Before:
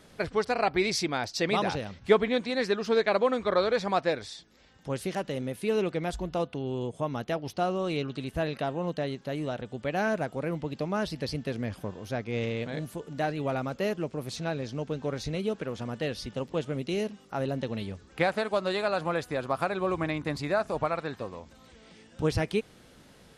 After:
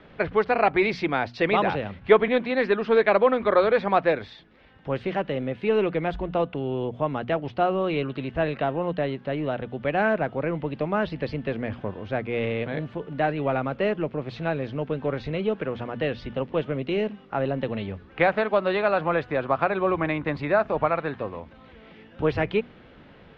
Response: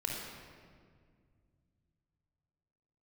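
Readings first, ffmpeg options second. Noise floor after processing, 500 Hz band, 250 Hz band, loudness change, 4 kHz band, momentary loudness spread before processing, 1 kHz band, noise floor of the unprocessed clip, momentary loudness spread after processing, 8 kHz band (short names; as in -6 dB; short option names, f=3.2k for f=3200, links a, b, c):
-50 dBFS, +5.5 dB, +4.0 dB, +5.0 dB, -1.5 dB, 9 LU, +6.0 dB, -56 dBFS, 10 LU, under -20 dB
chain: -filter_complex "[0:a]lowpass=f=3k:w=0.5412,lowpass=f=3k:w=1.3066,bandreject=f=60:t=h:w=6,bandreject=f=120:t=h:w=6,bandreject=f=180:t=h:w=6,bandreject=f=240:t=h:w=6,acrossover=split=310|1100[a][b][c];[a]asoftclip=type=tanh:threshold=-34dB[d];[d][b][c]amix=inputs=3:normalize=0,volume=6dB"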